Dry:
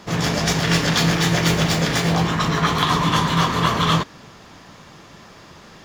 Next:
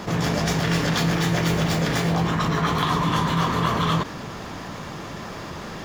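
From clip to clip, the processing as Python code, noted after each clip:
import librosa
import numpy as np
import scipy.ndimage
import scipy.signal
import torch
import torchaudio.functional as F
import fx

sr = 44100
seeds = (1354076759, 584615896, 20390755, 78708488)

y = fx.peak_eq(x, sr, hz=5000.0, db=-5.0, octaves=2.8)
y = fx.env_flatten(y, sr, amount_pct=50)
y = y * 10.0 ** (-4.0 / 20.0)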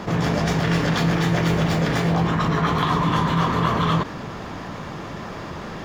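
y = fx.high_shelf(x, sr, hz=4400.0, db=-9.5)
y = y * 10.0 ** (2.0 / 20.0)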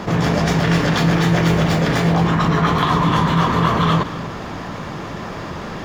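y = x + 10.0 ** (-16.0 / 20.0) * np.pad(x, (int(238 * sr / 1000.0), 0))[:len(x)]
y = y * 10.0 ** (4.0 / 20.0)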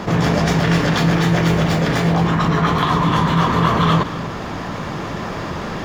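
y = fx.rider(x, sr, range_db=3, speed_s=2.0)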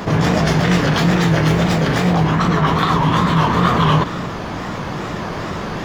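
y = fx.wow_flutter(x, sr, seeds[0], rate_hz=2.1, depth_cents=120.0)
y = y * 10.0 ** (1.0 / 20.0)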